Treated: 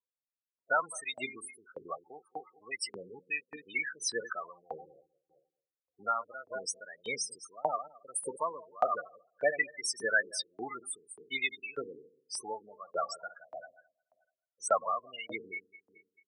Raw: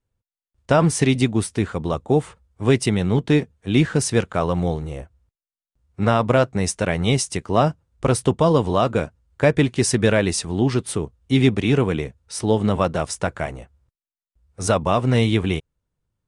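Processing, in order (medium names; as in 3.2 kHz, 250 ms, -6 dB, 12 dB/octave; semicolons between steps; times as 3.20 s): backward echo that repeats 108 ms, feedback 56%, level -9 dB; loudest bins only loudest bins 16; LFO high-pass saw up 1.7 Hz 960–4300 Hz; trim -2 dB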